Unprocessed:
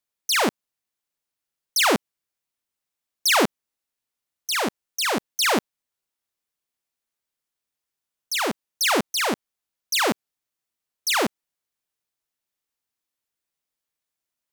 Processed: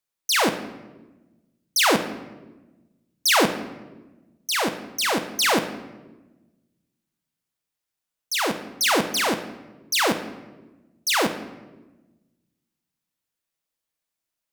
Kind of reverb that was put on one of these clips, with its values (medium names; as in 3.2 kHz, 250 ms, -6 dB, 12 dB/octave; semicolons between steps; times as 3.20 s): simulated room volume 610 m³, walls mixed, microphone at 0.63 m